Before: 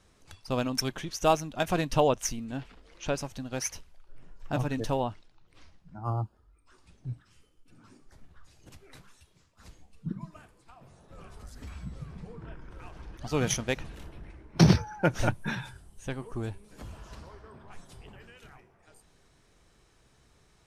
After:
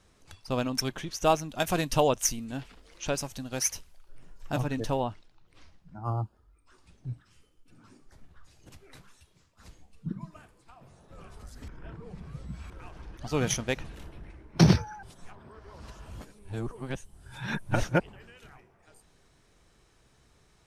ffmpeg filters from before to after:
-filter_complex "[0:a]asettb=1/sr,asplit=3[a][b][c];[a]atrim=end=1.494[d];[b]atrim=start=1.49:end=4.6,asetpts=PTS-STARTPTS,afade=t=in:d=0.004:c=qsin,afade=t=out:st=3.106:d=0.004:c=qsin,aemphasis=mode=production:type=cd[e];[c]atrim=start=4.596[f];[d][e]acrossfade=d=0.004:c1=hsin:c2=qsin[g];[g][f]acrossfade=d=0.004:c1=qsin:c2=hsin,asplit=5[h][i][j][k][l];[h]atrim=end=11.682[m];[i]atrim=start=11.678:end=12.702,asetpts=PTS-STARTPTS,areverse[n];[j]atrim=start=12.698:end=15.032[o];[k]atrim=start=15.028:end=18.002,asetpts=PTS-STARTPTS,areverse[p];[l]atrim=start=17.998[q];[m][n]acrossfade=d=0.004:c1=hsin:c2=hsin[r];[r][o]acrossfade=d=0.004:c1=hsin:c2=hsin[s];[s][p]acrossfade=d=0.004:c1=hsin:c2=hsin[t];[t][q]acrossfade=d=0.004:c1=hsin:c2=hsin"

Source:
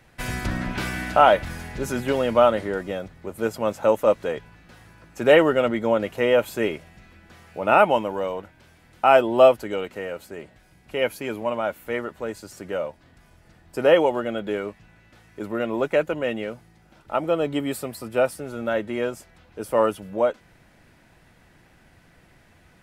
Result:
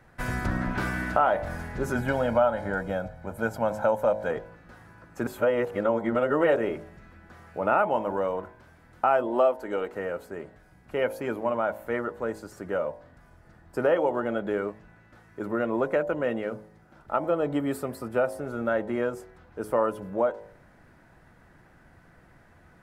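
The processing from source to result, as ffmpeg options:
-filter_complex "[0:a]asettb=1/sr,asplit=3[a][b][c];[a]atrim=end=1.954[d];[b]atrim=start=1.95:end=4.31,asetpts=PTS-STARTPTS,afade=t=in:d=0.004:c=qsin,afade=t=out:st=2.356:d=0.004:c=qsin,aecho=1:1:1.3:0.65,atrim=end_sample=104076[e];[c]atrim=start=4.306[f];[d][e]acrossfade=d=0.004:c1=hsin:c2=qsin[g];[g][f]acrossfade=d=0.004:c1=qsin:c2=hsin,asettb=1/sr,asplit=3[h][i][j];[h]atrim=end=9.274[k];[i]atrim=start=9.27:end=9.94,asetpts=PTS-STARTPTS,afade=t=in:d=0.004:c=qsin,afade=t=out:st=0.666:d=0.004:c=qsin,equalizer=f=120:w=1.5:g=-14[l];[j]atrim=start=9.936[m];[k][l]acrossfade=d=0.004:c1=hsin:c2=qsin[n];[n][m]acrossfade=d=0.004:c1=qsin:c2=hsin,asplit=3[o][p][q];[o]atrim=end=5.272[r];[p]atrim=start=5.268:end=6.562,asetpts=PTS-STARTPTS,areverse[s];[q]atrim=start=6.558[t];[r][s]acrossfade=d=0.004:c1=hsin:c2=hsin[u];[u][t]acrossfade=d=0.004:c1=hsin:c2=hsin,highshelf=f=2k:t=q:w=1.5:g=-7.5,bandreject=f=53.28:t=h:w=4,bandreject=f=106.56:t=h:w=4,bandreject=f=159.84:t=h:w=4,bandreject=f=213.12:t=h:w=4,bandreject=f=266.4:t=h:w=4,bandreject=f=319.68:t=h:w=4,bandreject=f=372.96:t=h:w=4,bandreject=f=426.24:t=h:w=4,bandreject=f=479.52:t=h:w=4,bandreject=f=532.8:t=h:w=4,bandreject=f=586.08:t=h:w=4,bandreject=f=639.36:t=h:w=4,bandreject=f=692.64:t=h:w=4,bandreject=f=745.92:t=h:w=4,bandreject=f=799.2:t=h:w=4,bandreject=f=852.48:t=h:w=4,bandreject=f=905.76:t=h:w=4,bandreject=f=959.04:t=h:w=4,bandreject=f=1.01232k:t=h:w=4,bandreject=f=1.0656k:t=h:w=4,acompressor=threshold=-22dB:ratio=2.5"

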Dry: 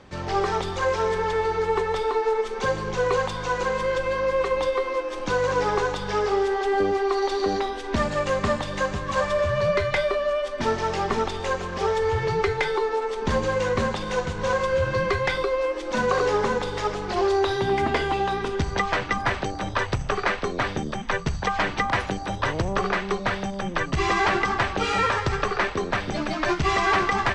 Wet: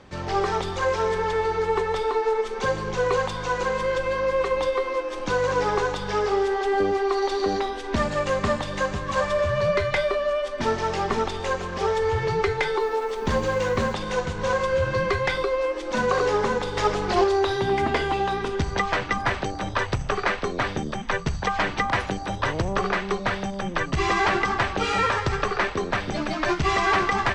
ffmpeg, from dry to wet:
-filter_complex "[0:a]asettb=1/sr,asplit=3[a][b][c];[a]atrim=end=12.804[d];[b]atrim=start=12.8:end=13.93,asetpts=PTS-STARTPTS,afade=t=in:d=0.004:c=qsin,afade=t=out:st=1.126:d=0.004:c=qsin,acrusher=bits=8:mix=0:aa=0.5[e];[c]atrim=start=13.926[f];[d][e]acrossfade=d=0.004:c1=hsin:c2=qsin[g];[g][f]acrossfade=d=0.004:c1=qsin:c2=hsin,asplit=3[h][i][j];[h]atrim=end=16.772[k];[i]atrim=start=16.768:end=17.242,asetpts=PTS-STARTPTS,volume=4dB[l];[j]atrim=start=17.238[m];[k][l]acrossfade=d=0.004:c1=hsin:c2=hsin[n];[n][m]acrossfade=d=0.004:c1=hsin:c2=hsin"

